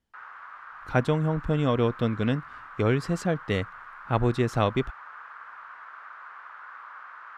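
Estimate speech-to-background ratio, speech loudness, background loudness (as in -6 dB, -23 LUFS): 16.5 dB, -27.0 LUFS, -43.5 LUFS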